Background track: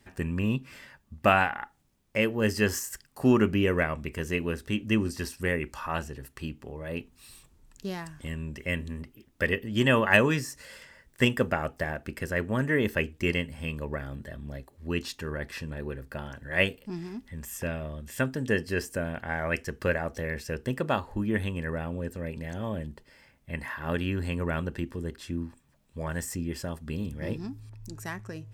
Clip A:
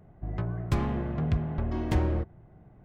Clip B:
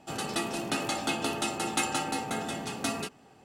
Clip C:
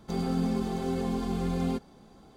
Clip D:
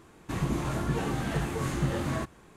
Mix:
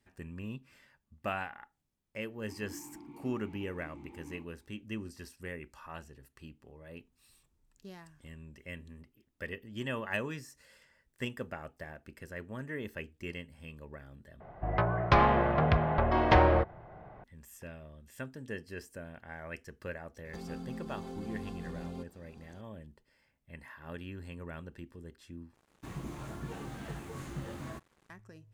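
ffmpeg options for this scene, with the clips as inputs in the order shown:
-filter_complex "[4:a]asplit=2[a][b];[0:a]volume=-14dB[c];[a]asplit=3[d][e][f];[d]bandpass=f=300:t=q:w=8,volume=0dB[g];[e]bandpass=f=870:t=q:w=8,volume=-6dB[h];[f]bandpass=f=2.24k:t=q:w=8,volume=-9dB[i];[g][h][i]amix=inputs=3:normalize=0[j];[1:a]firequalizer=gain_entry='entry(280,0);entry(540,13);entry(940,15);entry(5100,6);entry(8100,-17)':delay=0.05:min_phase=1[k];[3:a]alimiter=level_in=5.5dB:limit=-24dB:level=0:latency=1:release=344,volume=-5.5dB[l];[b]acrusher=bits=7:mix=0:aa=0.5[m];[c]asplit=3[n][o][p];[n]atrim=end=14.404[q];[k]atrim=end=2.84,asetpts=PTS-STARTPTS,volume=-1dB[r];[o]atrim=start=17.236:end=25.544[s];[m]atrim=end=2.56,asetpts=PTS-STARTPTS,volume=-12dB[t];[p]atrim=start=28.096[u];[j]atrim=end=2.56,asetpts=PTS-STARTPTS,volume=-8.5dB,afade=t=in:d=0.004:c=hsin,afade=t=out:st=2.556:d=0.004:c=hsin,adelay=2190[v];[l]atrim=end=2.36,asetpts=PTS-STARTPTS,volume=-4.5dB,afade=t=in:d=0.004:c=hsin,afade=t=out:st=2.356:d=0.004:c=hsin,adelay=20250[w];[q][r]acrossfade=d=0.004:c1=hsin:c2=hsin[x];[x][s]acrossfade=d=0.004:c1=hsin:c2=hsin[y];[y][t]acrossfade=d=0.004:c1=hsin:c2=hsin[z];[z][u]acrossfade=d=0.004:c1=hsin:c2=hsin[aa];[aa][v][w]amix=inputs=3:normalize=0"

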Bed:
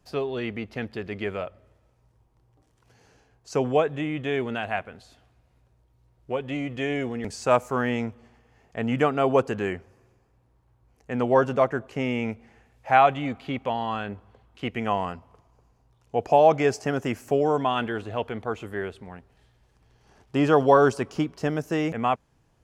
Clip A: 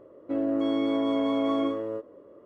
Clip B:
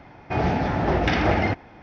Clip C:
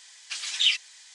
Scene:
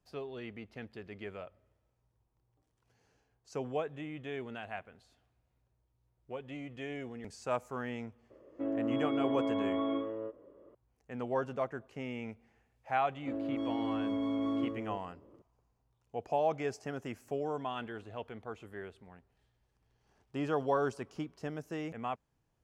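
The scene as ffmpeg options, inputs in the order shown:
-filter_complex "[1:a]asplit=2[a][b];[0:a]volume=-13.5dB[c];[a]aresample=8000,aresample=44100[d];[b]asubboost=boost=8:cutoff=240[e];[d]atrim=end=2.45,asetpts=PTS-STARTPTS,volume=-7dB,afade=t=in:d=0.004:c=hsin,afade=t=out:st=2.446:d=0.004:c=hsin,adelay=8300[f];[e]atrim=end=2.45,asetpts=PTS-STARTPTS,volume=-10dB,afade=t=in:d=0.004:c=hsin,afade=t=out:st=2.446:d=0.004:c=hsin,adelay=12970[g];[c][f][g]amix=inputs=3:normalize=0"

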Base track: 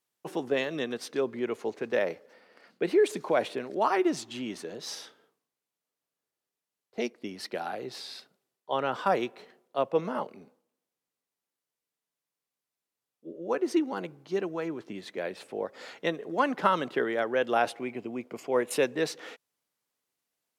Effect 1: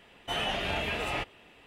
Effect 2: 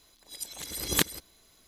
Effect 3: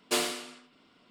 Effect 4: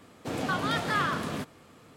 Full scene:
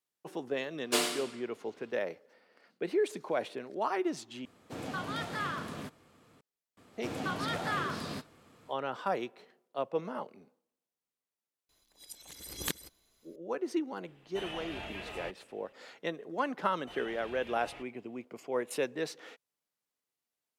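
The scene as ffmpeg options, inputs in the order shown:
-filter_complex "[4:a]asplit=2[a][b];[1:a]asplit=2[c][d];[0:a]volume=-6.5dB,asplit=2[e][f];[e]atrim=end=4.454[g];[a]atrim=end=1.96,asetpts=PTS-STARTPTS,volume=-8dB[h];[f]atrim=start=6.406[i];[3:a]atrim=end=1.1,asetpts=PTS-STARTPTS,volume=-1dB,afade=t=in:d=0.004:c=hsin,afade=t=out:st=1.096:d=0.004:c=hsin,adelay=810[j];[b]atrim=end=1.96,asetpts=PTS-STARTPTS,volume=-6dB,afade=t=in:d=0.004:c=hsin,afade=t=out:st=1.956:d=0.004:c=hsin,adelay=6770[k];[2:a]atrim=end=1.67,asetpts=PTS-STARTPTS,volume=-10dB,afade=t=in:d=0.004:c=hsin,afade=t=out:st=1.666:d=0.004:c=hsin,adelay=11690[l];[c]atrim=end=1.66,asetpts=PTS-STARTPTS,volume=-11dB,afade=t=in:d=0.004:c=hsin,afade=t=out:st=1.656:d=0.004:c=hsin,adelay=14070[m];[d]atrim=end=1.66,asetpts=PTS-STARTPTS,volume=-18dB,afade=t=in:d=0.004:c=hsin,afade=t=out:st=1.656:d=0.004:c=hsin,adelay=16590[n];[g][h]acrossfade=d=0.004:c1=hsin:c2=hsin[o];[o][i]acrossfade=d=0.004:c1=hsin:c2=hsin[p];[p][j][k][l][m][n]amix=inputs=6:normalize=0"

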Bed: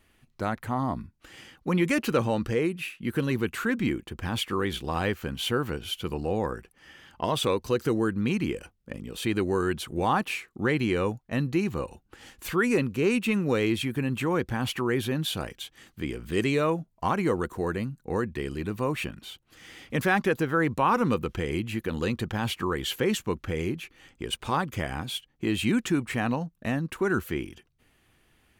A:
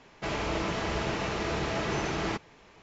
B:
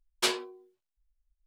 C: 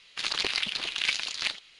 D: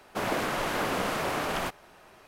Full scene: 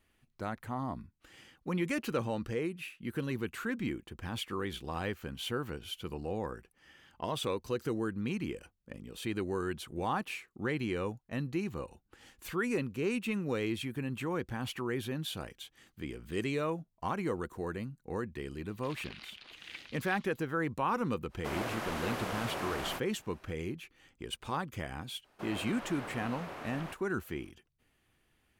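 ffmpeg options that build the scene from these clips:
-filter_complex "[4:a]asplit=2[a][b];[0:a]volume=-8.5dB[c];[3:a]acrossover=split=3600[d][e];[e]acompressor=threshold=-44dB:ratio=4:attack=1:release=60[f];[d][f]amix=inputs=2:normalize=0[g];[b]acrossover=split=3700[h][i];[i]acompressor=threshold=-48dB:ratio=4:attack=1:release=60[j];[h][j]amix=inputs=2:normalize=0[k];[g]atrim=end=1.79,asetpts=PTS-STARTPTS,volume=-17.5dB,afade=t=in:d=0.004:c=hsin,afade=t=out:st=1.786:d=0.004:c=hsin,adelay=18660[l];[a]atrim=end=2.27,asetpts=PTS-STARTPTS,volume=-8dB,afade=t=in:d=0.05,afade=t=out:st=2.22:d=0.05,adelay=21290[m];[k]atrim=end=2.27,asetpts=PTS-STARTPTS,volume=-14dB,afade=t=in:d=0.004:c=hsin,afade=t=out:st=2.266:d=0.004:c=hsin,adelay=25240[n];[c][l][m][n]amix=inputs=4:normalize=0"

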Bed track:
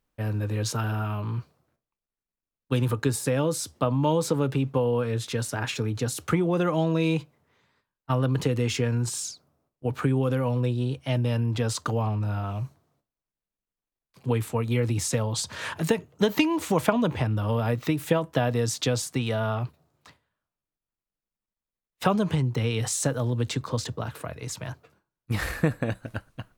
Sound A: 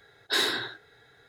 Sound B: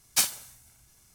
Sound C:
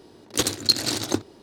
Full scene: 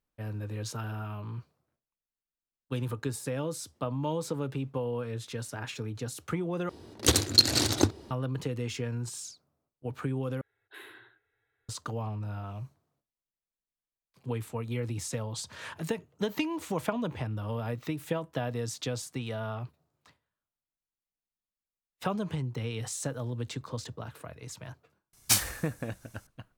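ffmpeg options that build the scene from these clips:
-filter_complex "[0:a]volume=-8.5dB[a];[3:a]equalizer=f=75:t=o:w=0.87:g=13[b];[1:a]firequalizer=gain_entry='entry(110,0);entry(180,-27);entry(300,-3);entry(620,-9);entry(890,-5);entry(2700,1);entry(5000,-29);entry(10000,-3)':delay=0.05:min_phase=1[c];[a]asplit=3[d][e][f];[d]atrim=end=6.694[g];[b]atrim=end=1.42,asetpts=PTS-STARTPTS,volume=-0.5dB[h];[e]atrim=start=8.106:end=10.414[i];[c]atrim=end=1.28,asetpts=PTS-STARTPTS,volume=-17dB[j];[f]atrim=start=11.686[k];[2:a]atrim=end=1.14,asetpts=PTS-STARTPTS,volume=-0.5dB,afade=t=in:d=0.004:c=hsin,afade=t=out:st=1.136:d=0.004:c=hsin,adelay=25130[l];[g][h]acrossfade=d=0.004:c1=hsin:c2=hsin[m];[m][i]acrossfade=d=0.004:c1=hsin:c2=hsin[n];[n][j]acrossfade=d=0.004:c1=hsin:c2=hsin[o];[o][k]acrossfade=d=0.004:c1=hsin:c2=hsin[p];[p][l]amix=inputs=2:normalize=0"

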